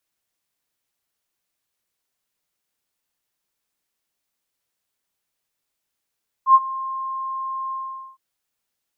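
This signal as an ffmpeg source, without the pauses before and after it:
ffmpeg -f lavfi -i "aevalsrc='0.501*sin(2*PI*1060*t)':duration=1.712:sample_rate=44100,afade=type=in:duration=0.086,afade=type=out:start_time=0.086:duration=0.041:silence=0.112,afade=type=out:start_time=1.26:duration=0.452" out.wav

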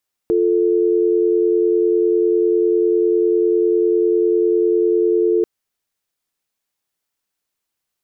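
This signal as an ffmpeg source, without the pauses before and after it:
ffmpeg -f lavfi -i "aevalsrc='0.168*(sin(2*PI*350*t)+sin(2*PI*440*t))':duration=5.14:sample_rate=44100" out.wav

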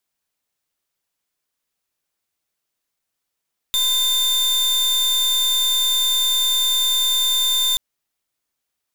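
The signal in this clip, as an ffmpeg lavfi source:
ffmpeg -f lavfi -i "aevalsrc='0.119*(2*lt(mod(3590*t,1),0.39)-1)':duration=4.03:sample_rate=44100" out.wav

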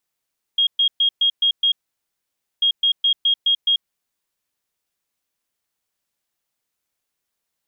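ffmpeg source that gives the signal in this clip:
ffmpeg -f lavfi -i "aevalsrc='0.211*sin(2*PI*3260*t)*clip(min(mod(mod(t,2.04),0.21),0.09-mod(mod(t,2.04),0.21))/0.005,0,1)*lt(mod(t,2.04),1.26)':duration=4.08:sample_rate=44100" out.wav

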